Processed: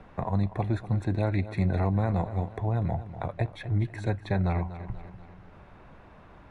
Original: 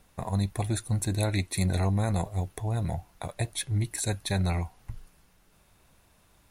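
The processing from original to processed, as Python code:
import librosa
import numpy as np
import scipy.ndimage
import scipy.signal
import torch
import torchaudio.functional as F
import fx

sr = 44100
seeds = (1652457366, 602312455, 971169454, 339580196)

p1 = scipy.signal.sosfilt(scipy.signal.butter(2, 1700.0, 'lowpass', fs=sr, output='sos'), x)
p2 = fx.low_shelf(p1, sr, hz=130.0, db=-3.0)
p3 = p2 + fx.echo_feedback(p2, sr, ms=243, feedback_pct=39, wet_db=-15, dry=0)
p4 = fx.band_squash(p3, sr, depth_pct=40)
y = F.gain(torch.from_numpy(p4), 2.5).numpy()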